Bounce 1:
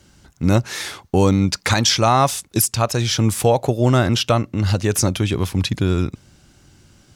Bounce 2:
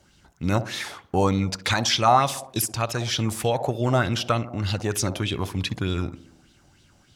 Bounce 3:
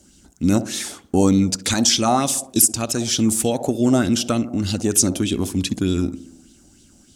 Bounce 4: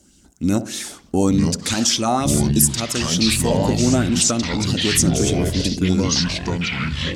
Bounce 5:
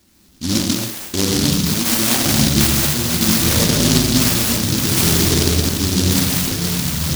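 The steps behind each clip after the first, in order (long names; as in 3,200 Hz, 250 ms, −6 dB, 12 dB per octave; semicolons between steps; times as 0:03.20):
tape delay 61 ms, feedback 73%, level −12 dB, low-pass 1,200 Hz; auto-filter bell 3.3 Hz 660–3,700 Hz +11 dB; level −8 dB
graphic EQ with 10 bands 125 Hz −10 dB, 250 Hz +9 dB, 500 Hz −4 dB, 1,000 Hz −10 dB, 2,000 Hz −8 dB, 4,000 Hz −4 dB, 8,000 Hz +9 dB; level +6.5 dB
delay with pitch and tempo change per echo 737 ms, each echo −5 semitones, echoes 3; level −1.5 dB
reverb whose tail is shaped and stops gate 310 ms flat, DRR −4.5 dB; short delay modulated by noise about 4,700 Hz, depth 0.35 ms; level −3 dB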